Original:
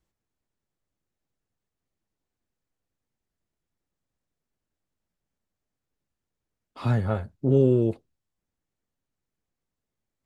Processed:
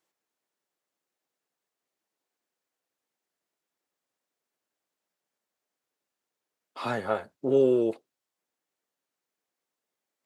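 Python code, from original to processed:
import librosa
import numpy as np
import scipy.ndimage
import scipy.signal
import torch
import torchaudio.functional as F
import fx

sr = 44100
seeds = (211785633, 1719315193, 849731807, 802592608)

y = scipy.signal.sosfilt(scipy.signal.butter(2, 420.0, 'highpass', fs=sr, output='sos'), x)
y = F.gain(torch.from_numpy(y), 3.5).numpy()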